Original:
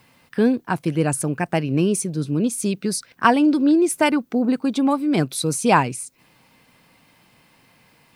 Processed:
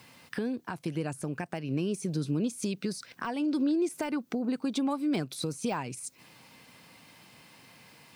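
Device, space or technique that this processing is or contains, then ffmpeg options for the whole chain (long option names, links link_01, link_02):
broadcast voice chain: -af "highpass=78,deesser=0.65,acompressor=threshold=-25dB:ratio=5,equalizer=frequency=5800:width_type=o:width=1.8:gain=4.5,alimiter=limit=-21dB:level=0:latency=1:release=356"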